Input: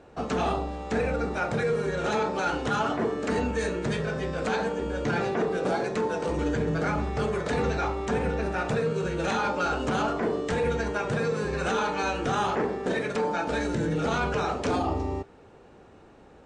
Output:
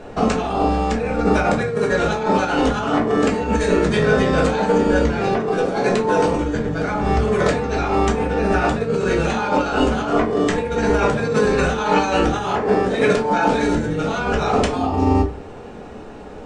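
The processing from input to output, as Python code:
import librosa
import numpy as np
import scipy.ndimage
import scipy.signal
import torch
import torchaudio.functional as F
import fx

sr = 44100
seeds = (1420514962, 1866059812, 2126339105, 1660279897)

y = fx.over_compress(x, sr, threshold_db=-30.0, ratio=-0.5)
y = fx.room_shoebox(y, sr, seeds[0], volume_m3=170.0, walls='furnished', distance_m=1.4)
y = F.gain(torch.from_numpy(y), 9.0).numpy()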